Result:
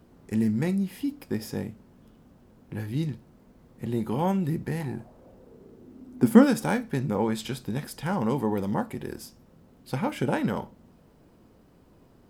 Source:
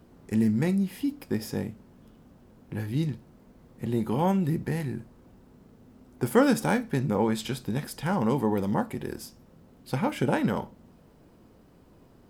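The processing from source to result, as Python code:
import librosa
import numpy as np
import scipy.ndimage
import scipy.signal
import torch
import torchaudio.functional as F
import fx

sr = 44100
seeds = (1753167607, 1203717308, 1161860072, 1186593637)

y = fx.peak_eq(x, sr, hz=fx.line((4.8, 890.0), (6.44, 200.0)), db=13.5, octaves=0.75, at=(4.8, 6.44), fade=0.02)
y = y * librosa.db_to_amplitude(-1.0)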